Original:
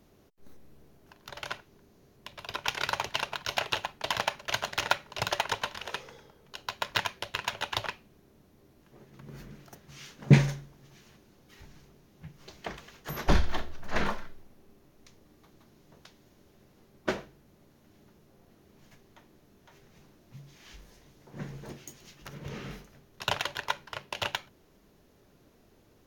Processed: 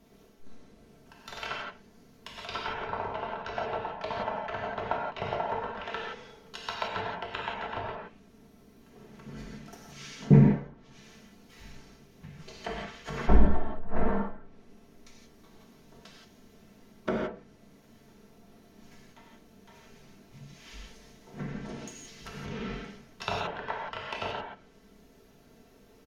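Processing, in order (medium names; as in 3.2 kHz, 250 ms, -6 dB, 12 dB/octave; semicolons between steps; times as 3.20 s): comb 4.5 ms, depth 56%; low-pass that closes with the level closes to 880 Hz, closed at -29 dBFS; gated-style reverb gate 200 ms flat, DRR -3 dB; trim -1.5 dB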